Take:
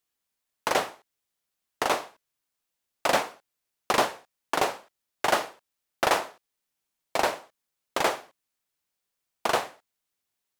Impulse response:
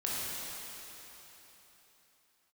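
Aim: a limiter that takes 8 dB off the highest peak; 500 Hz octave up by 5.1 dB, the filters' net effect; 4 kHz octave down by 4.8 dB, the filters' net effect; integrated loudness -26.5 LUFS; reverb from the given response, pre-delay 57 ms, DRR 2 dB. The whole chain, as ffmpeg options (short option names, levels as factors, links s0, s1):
-filter_complex "[0:a]equalizer=f=500:t=o:g=6.5,equalizer=f=4000:t=o:g=-6.5,alimiter=limit=0.211:level=0:latency=1,asplit=2[s0][s1];[1:a]atrim=start_sample=2205,adelay=57[s2];[s1][s2]afir=irnorm=-1:irlink=0,volume=0.376[s3];[s0][s3]amix=inputs=2:normalize=0,volume=1.5"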